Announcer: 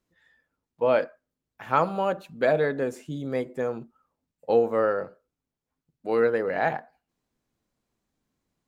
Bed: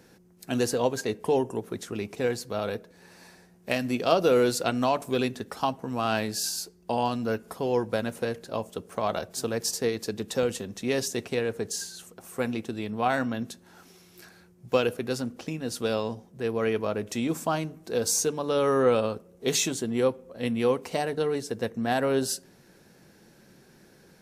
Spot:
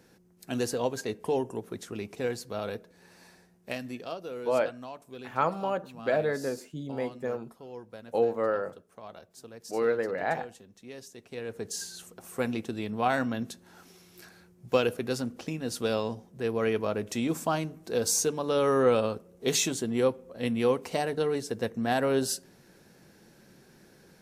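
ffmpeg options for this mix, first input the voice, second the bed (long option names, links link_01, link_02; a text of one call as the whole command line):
ffmpeg -i stem1.wav -i stem2.wav -filter_complex "[0:a]adelay=3650,volume=-4.5dB[link_01];[1:a]volume=12.5dB,afade=type=out:start_time=3.36:duration=0.83:silence=0.211349,afade=type=in:start_time=11.23:duration=0.71:silence=0.149624[link_02];[link_01][link_02]amix=inputs=2:normalize=0" out.wav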